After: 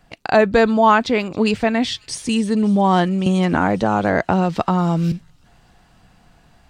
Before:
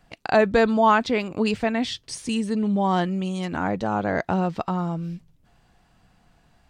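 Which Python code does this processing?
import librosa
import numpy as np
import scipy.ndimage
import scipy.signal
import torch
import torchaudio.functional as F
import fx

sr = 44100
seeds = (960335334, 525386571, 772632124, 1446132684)

p1 = fx.rider(x, sr, range_db=10, speed_s=2.0)
p2 = x + F.gain(torch.from_numpy(p1), 0.0).numpy()
p3 = fx.echo_wet_highpass(p2, sr, ms=273, feedback_pct=75, hz=4400.0, wet_db=-19.5)
p4 = fx.band_squash(p3, sr, depth_pct=100, at=(3.26, 5.12))
y = F.gain(torch.from_numpy(p4), -1.0).numpy()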